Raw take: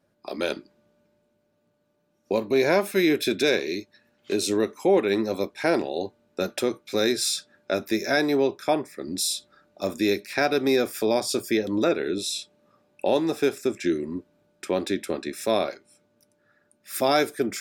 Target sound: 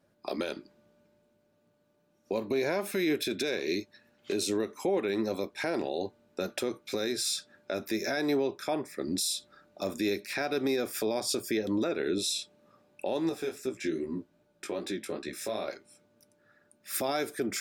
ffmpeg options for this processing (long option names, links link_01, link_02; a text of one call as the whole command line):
ffmpeg -i in.wav -filter_complex "[0:a]alimiter=limit=-20.5dB:level=0:latency=1:release=168,asettb=1/sr,asplit=3[link_01][link_02][link_03];[link_01]atrim=end=13.294[link_04];[link_02]atrim=start=13.29:end=15.68,asetpts=PTS-STARTPTS,afade=type=in:duration=0.004:curve=qsin,afade=type=out:start_time=2.386:duration=0.004:curve=qsin,flanger=delay=15.5:depth=4.1:speed=2.5[link_05];[link_03]atrim=start=15.676[link_06];[link_04][link_05]acrossfade=duration=0.004:curve1=hsin:curve2=qsin[link_07];[link_07][link_06]acrossfade=duration=0.004:curve1=qsin:curve2=hsin" out.wav